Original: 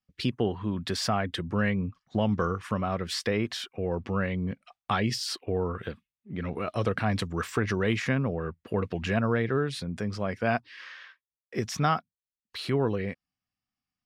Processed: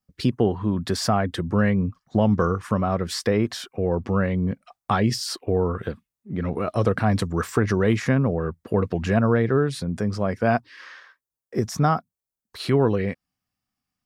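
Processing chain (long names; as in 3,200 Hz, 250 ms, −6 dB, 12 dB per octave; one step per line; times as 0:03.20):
parametric band 2,800 Hz −9 dB 1.5 octaves, from 0:11.00 −15 dB, from 0:12.60 −3.5 dB
level +7 dB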